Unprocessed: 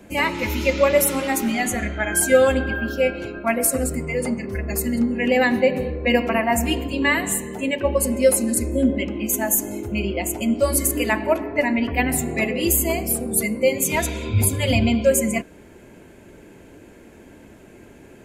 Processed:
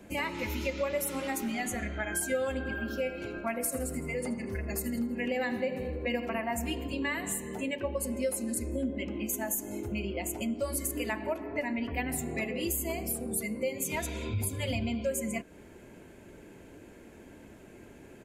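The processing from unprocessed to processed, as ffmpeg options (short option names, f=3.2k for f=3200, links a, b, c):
-filter_complex "[0:a]asplit=3[a][b][c];[a]afade=t=out:st=2.65:d=0.02[d];[b]aecho=1:1:81|162|243|324|405:0.2|0.0978|0.0479|0.0235|0.0115,afade=t=in:st=2.65:d=0.02,afade=t=out:st=6.25:d=0.02[e];[c]afade=t=in:st=6.25:d=0.02[f];[d][e][f]amix=inputs=3:normalize=0,acompressor=threshold=-27dB:ratio=2.5,volume=-5.5dB"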